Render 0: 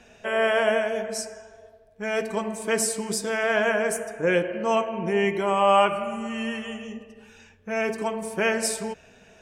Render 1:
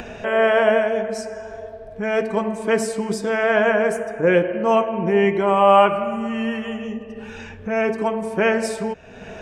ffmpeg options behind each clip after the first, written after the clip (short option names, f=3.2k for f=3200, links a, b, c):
-af "lowpass=f=1.7k:p=1,acompressor=mode=upward:threshold=-30dB:ratio=2.5,volume=6.5dB"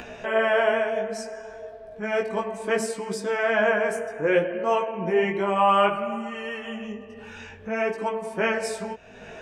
-af "lowshelf=f=390:g=-5.5,flanger=delay=15.5:depth=5.7:speed=0.62"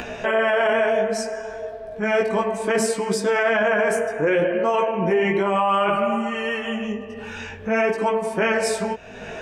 -af "alimiter=limit=-19.5dB:level=0:latency=1:release=11,volume=7.5dB"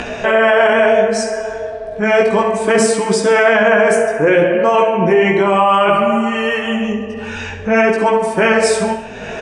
-filter_complex "[0:a]asplit=2[a][b];[b]aecho=0:1:67|134|201|268|335:0.316|0.152|0.0729|0.035|0.0168[c];[a][c]amix=inputs=2:normalize=0,aresample=22050,aresample=44100,volume=7.5dB"